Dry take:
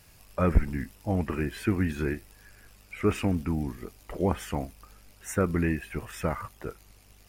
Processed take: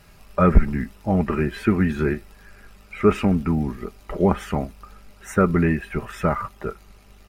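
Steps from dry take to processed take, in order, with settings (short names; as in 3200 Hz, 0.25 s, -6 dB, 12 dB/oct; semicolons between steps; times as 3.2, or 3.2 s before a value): high shelf 4000 Hz -11 dB; comb 5 ms, depth 41%; small resonant body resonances 1300/3900 Hz, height 10 dB; gain +7 dB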